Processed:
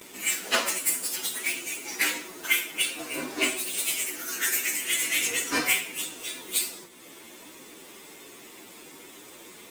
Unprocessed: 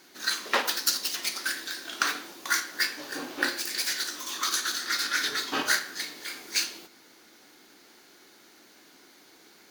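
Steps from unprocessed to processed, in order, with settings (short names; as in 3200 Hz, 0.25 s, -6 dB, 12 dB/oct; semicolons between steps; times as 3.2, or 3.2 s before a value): inharmonic rescaling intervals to 122%; gate with hold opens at -54 dBFS; in parallel at +2.5 dB: upward compressor, threshold -41 dBFS; on the sum: ending taper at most 130 dB/s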